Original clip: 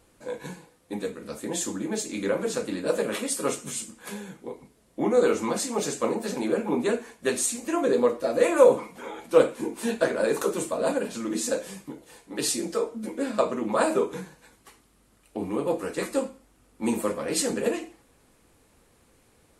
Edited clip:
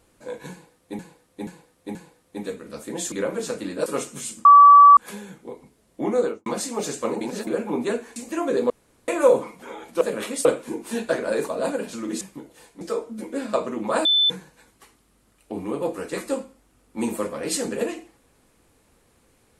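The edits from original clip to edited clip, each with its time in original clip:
0:00.51–0:00.99: repeat, 4 plays
0:01.68–0:02.19: remove
0:02.93–0:03.37: move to 0:09.37
0:03.96: insert tone 1,150 Hz −6 dBFS 0.52 s
0:05.13–0:05.45: fade out and dull
0:06.20–0:06.46: reverse
0:07.15–0:07.52: remove
0:08.06–0:08.44: fill with room tone
0:10.40–0:10.70: remove
0:11.43–0:11.73: remove
0:12.33–0:12.66: remove
0:13.90–0:14.15: beep over 3,520 Hz −15 dBFS

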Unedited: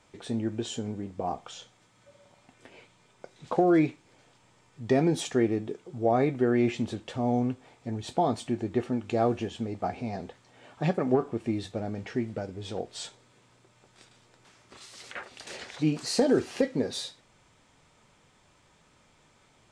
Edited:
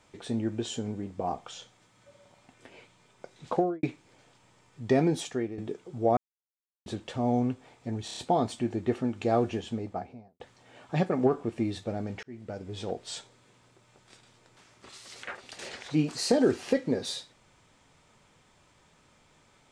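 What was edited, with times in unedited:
0:03.51–0:03.83: fade out and dull
0:05.01–0:05.58: fade out, to −13 dB
0:06.17–0:06.86: silence
0:08.05: stutter 0.03 s, 5 plays
0:09.55–0:10.28: fade out and dull
0:12.11–0:12.57: fade in linear

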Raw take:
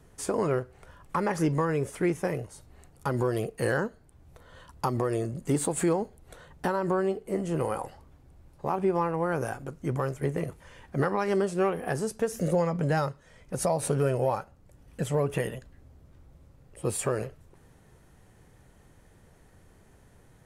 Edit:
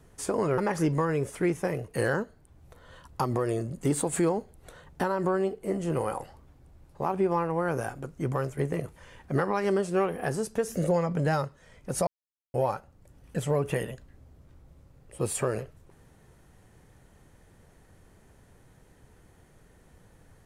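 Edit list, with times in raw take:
0:00.58–0:01.18: remove
0:02.48–0:03.52: remove
0:13.71–0:14.18: silence

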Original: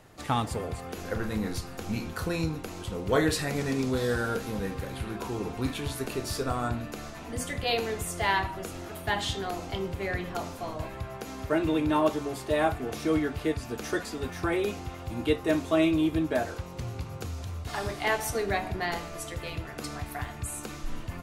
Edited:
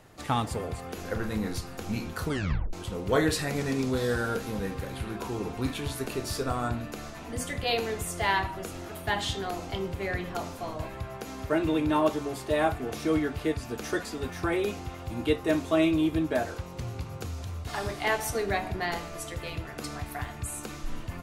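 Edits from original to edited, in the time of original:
0:02.24: tape stop 0.49 s

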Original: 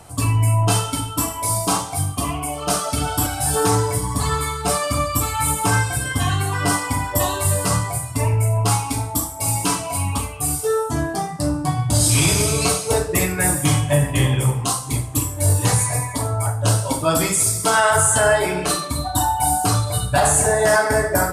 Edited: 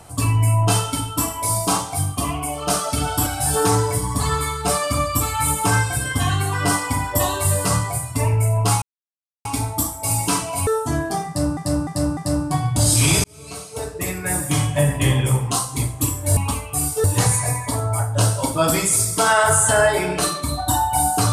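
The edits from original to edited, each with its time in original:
0:08.82: splice in silence 0.63 s
0:10.04–0:10.71: move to 0:15.51
0:11.31–0:11.61: repeat, 4 plays
0:12.38–0:14.12: fade in

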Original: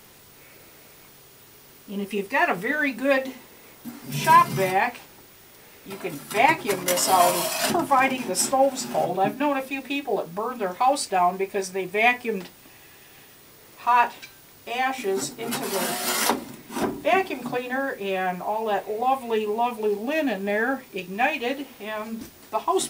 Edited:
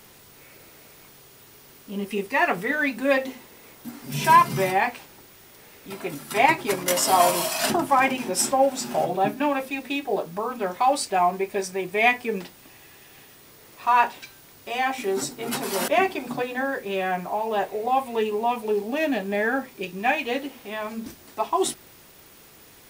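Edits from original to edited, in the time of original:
0:15.88–0:17.03: remove

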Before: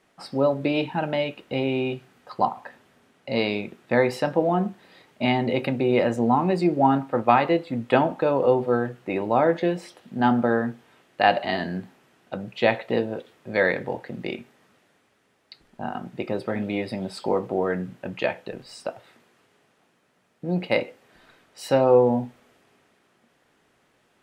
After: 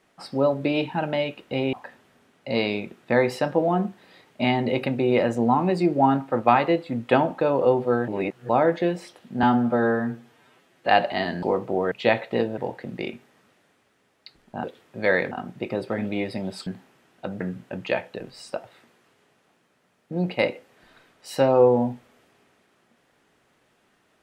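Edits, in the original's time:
0:01.73–0:02.54: remove
0:08.89–0:09.30: reverse
0:10.24–0:11.21: time-stretch 1.5×
0:11.75–0:12.49: swap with 0:17.24–0:17.73
0:13.15–0:13.83: move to 0:15.89

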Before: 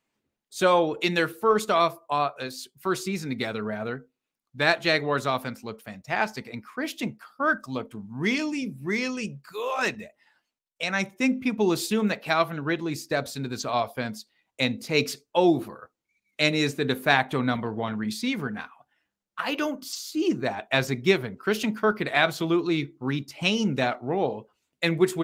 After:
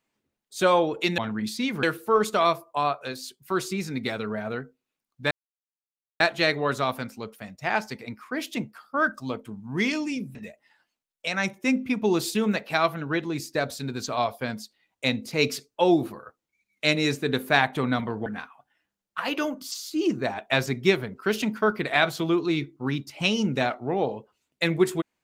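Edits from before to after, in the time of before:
0:04.66: splice in silence 0.89 s
0:08.81–0:09.91: remove
0:17.82–0:18.47: move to 0:01.18

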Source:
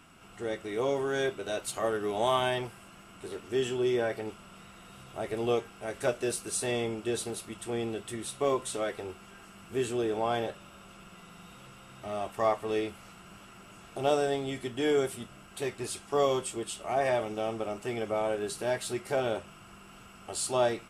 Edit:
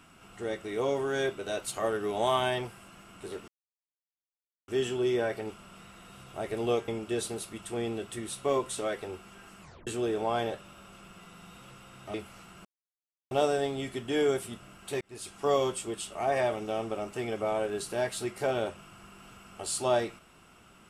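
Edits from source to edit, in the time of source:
0:03.48: splice in silence 1.20 s
0:05.68–0:06.84: remove
0:09.57: tape stop 0.26 s
0:12.10–0:12.83: remove
0:13.34–0:14.00: silence
0:15.70–0:16.07: fade in linear

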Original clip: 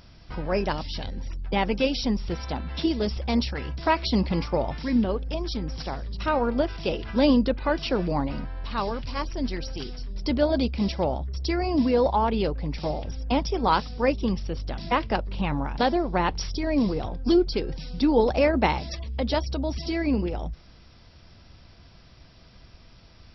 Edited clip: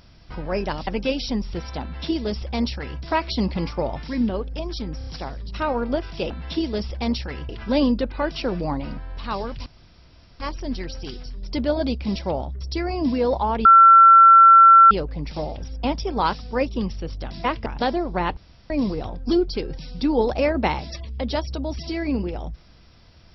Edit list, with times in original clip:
0:00.87–0:01.62: remove
0:02.57–0:03.76: duplicate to 0:06.96
0:05.73: stutter 0.03 s, 4 plays
0:09.13: splice in room tone 0.74 s
0:12.38: insert tone 1,350 Hz −6.5 dBFS 1.26 s
0:15.13–0:15.65: remove
0:16.36–0:16.69: fill with room tone

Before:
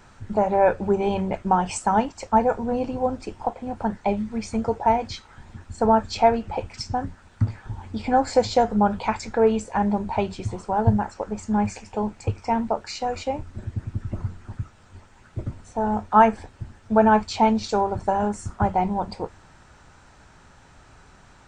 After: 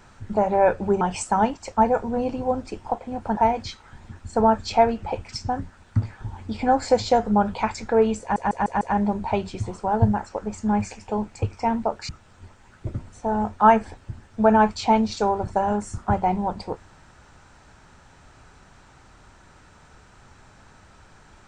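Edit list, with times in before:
0:01.01–0:01.56: remove
0:03.92–0:04.82: remove
0:09.66: stutter 0.15 s, 5 plays
0:12.94–0:14.61: remove

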